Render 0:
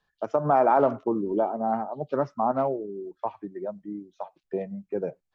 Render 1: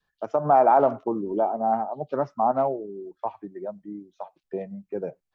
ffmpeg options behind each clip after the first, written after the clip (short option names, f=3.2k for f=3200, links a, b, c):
-af "adynamicequalizer=threshold=0.0224:dfrequency=750:dqfactor=2.2:tfrequency=750:tqfactor=2.2:attack=5:release=100:ratio=0.375:range=3:mode=boostabove:tftype=bell,volume=-1.5dB"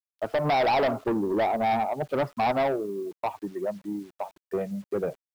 -af "aresample=11025,asoftclip=type=tanh:threshold=-25.5dB,aresample=44100,acrusher=bits=9:mix=0:aa=0.000001,volume=5dB"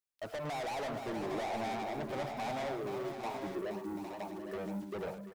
-filter_complex "[0:a]acompressor=threshold=-30dB:ratio=6,asoftclip=type=tanh:threshold=-37dB,asplit=2[a][b];[b]aecho=0:1:108|473|736|807|870:0.299|0.398|0.237|0.355|0.376[c];[a][c]amix=inputs=2:normalize=0"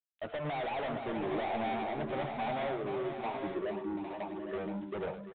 -filter_complex "[0:a]asplit=2[a][b];[b]adelay=13,volume=-11.5dB[c];[a][c]amix=inputs=2:normalize=0,volume=2dB" -ar 8000 -c:a adpcm_g726 -b:a 40k